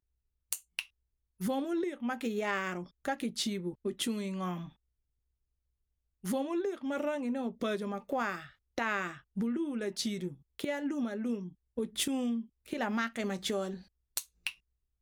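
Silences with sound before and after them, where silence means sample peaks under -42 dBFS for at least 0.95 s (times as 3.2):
4.68–6.24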